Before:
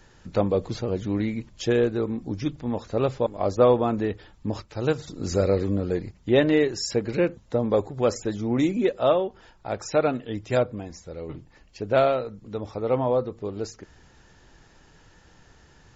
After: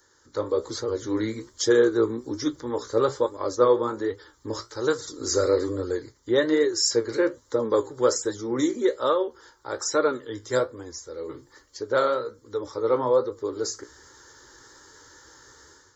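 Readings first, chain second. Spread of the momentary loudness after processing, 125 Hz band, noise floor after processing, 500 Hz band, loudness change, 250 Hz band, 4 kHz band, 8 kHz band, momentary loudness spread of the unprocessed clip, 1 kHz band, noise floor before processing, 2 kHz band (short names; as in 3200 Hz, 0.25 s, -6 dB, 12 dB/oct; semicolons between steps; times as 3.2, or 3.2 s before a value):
14 LU, -9.5 dB, -61 dBFS, +0.5 dB, 0.0 dB, -2.0 dB, +4.5 dB, n/a, 13 LU, 0.0 dB, -56 dBFS, +1.0 dB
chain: HPF 270 Hz 6 dB/oct; high shelf 3100 Hz +9 dB; AGC gain up to 11.5 dB; flange 1.2 Hz, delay 9.7 ms, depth 9.5 ms, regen +56%; fixed phaser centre 700 Hz, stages 6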